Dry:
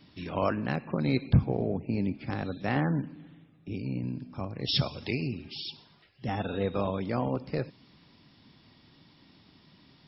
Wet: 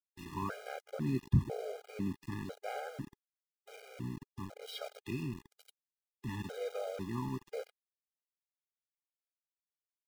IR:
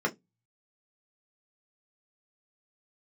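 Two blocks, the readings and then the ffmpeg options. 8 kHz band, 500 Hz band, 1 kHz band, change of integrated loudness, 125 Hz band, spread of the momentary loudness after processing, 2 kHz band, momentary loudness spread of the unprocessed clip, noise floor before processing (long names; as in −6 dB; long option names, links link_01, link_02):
can't be measured, −9.0 dB, −9.0 dB, −8.5 dB, −8.0 dB, 14 LU, −10.5 dB, 11 LU, −60 dBFS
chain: -filter_complex "[0:a]asplit=2[link_01][link_02];[link_02]adelay=100,highpass=300,lowpass=3400,asoftclip=type=hard:threshold=-22dB,volume=-17dB[link_03];[link_01][link_03]amix=inputs=2:normalize=0,acrossover=split=3700[link_04][link_05];[link_05]acompressor=threshold=-59dB:ratio=4:attack=1:release=60[link_06];[link_04][link_06]amix=inputs=2:normalize=0,asplit=2[link_07][link_08];[1:a]atrim=start_sample=2205,lowshelf=frequency=410:gain=-3[link_09];[link_08][link_09]afir=irnorm=-1:irlink=0,volume=-30.5dB[link_10];[link_07][link_10]amix=inputs=2:normalize=0,aeval=exprs='val(0)*gte(abs(val(0)),0.0158)':channel_layout=same,afftfilt=real='re*gt(sin(2*PI*1*pts/sr)*(1-2*mod(floor(b*sr/1024/410),2)),0)':imag='im*gt(sin(2*PI*1*pts/sr)*(1-2*mod(floor(b*sr/1024/410),2)),0)':win_size=1024:overlap=0.75,volume=-6dB"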